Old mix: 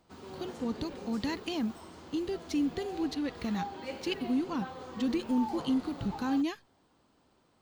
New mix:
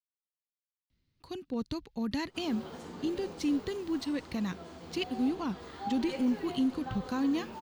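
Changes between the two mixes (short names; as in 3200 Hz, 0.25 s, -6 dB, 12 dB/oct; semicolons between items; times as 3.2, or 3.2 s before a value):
speech: entry +0.90 s; background: entry +2.25 s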